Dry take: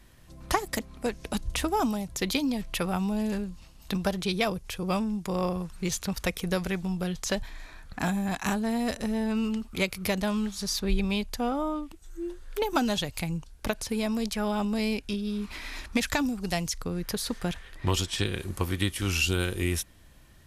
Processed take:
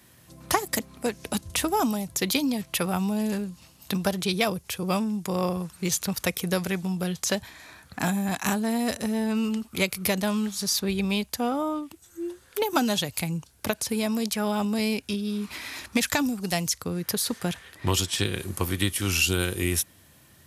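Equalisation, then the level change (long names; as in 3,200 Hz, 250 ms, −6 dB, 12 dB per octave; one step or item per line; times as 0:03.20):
high-pass filter 82 Hz 24 dB per octave
high-shelf EQ 8,400 Hz +10 dB
+2.0 dB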